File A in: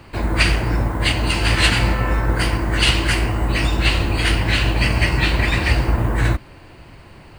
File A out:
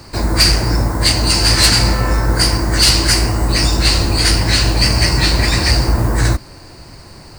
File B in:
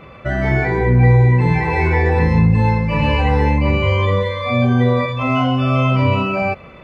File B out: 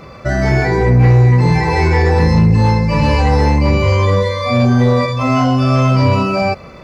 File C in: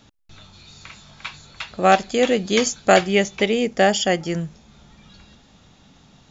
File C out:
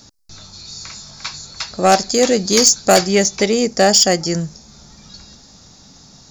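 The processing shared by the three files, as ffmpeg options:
-af "highshelf=f=3900:t=q:w=3:g=8,aeval=exprs='1.19*(cos(1*acos(clip(val(0)/1.19,-1,1)))-cos(1*PI/2))+0.266*(cos(5*acos(clip(val(0)/1.19,-1,1)))-cos(5*PI/2))':c=same,volume=0.794"

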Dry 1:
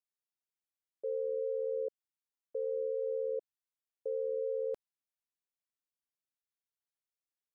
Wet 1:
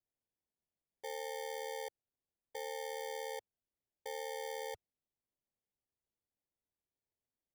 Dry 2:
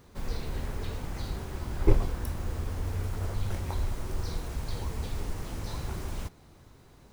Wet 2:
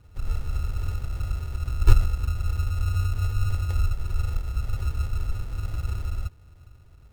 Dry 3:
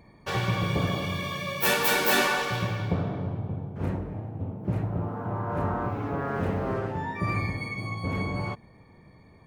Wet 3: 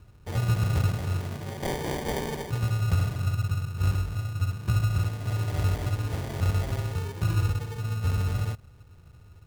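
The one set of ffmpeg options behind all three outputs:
-af "lowshelf=f=140:t=q:w=1.5:g=12.5,acrusher=samples=33:mix=1:aa=0.000001,volume=0.473"

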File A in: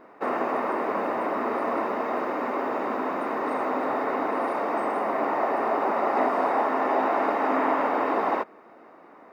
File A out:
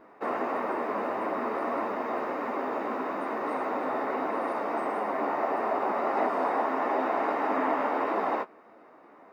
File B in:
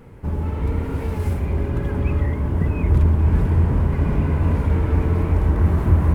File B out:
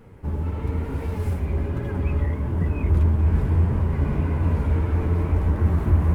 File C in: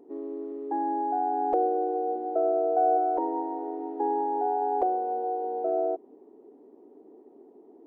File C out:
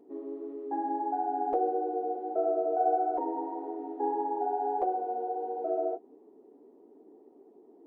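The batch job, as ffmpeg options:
-af "flanger=delay=8.7:depth=6.1:regen=-27:speed=1.6:shape=triangular"

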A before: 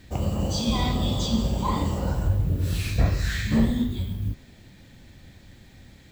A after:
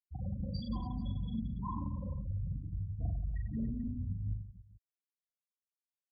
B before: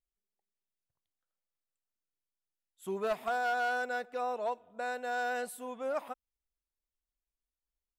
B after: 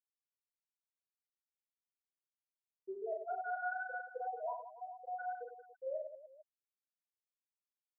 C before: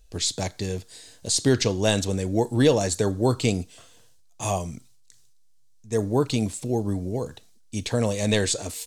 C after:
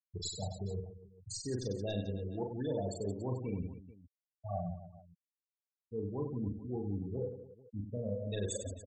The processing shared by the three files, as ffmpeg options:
-af "afftfilt=real='re*gte(hypot(re,im),0.178)':imag='im*gte(hypot(re,im),0.178)':win_size=1024:overlap=0.75,areverse,acompressor=threshold=0.0178:ratio=5,areverse,aecho=1:1:40|96|174.4|284.2|437.8:0.631|0.398|0.251|0.158|0.1,volume=0.75"

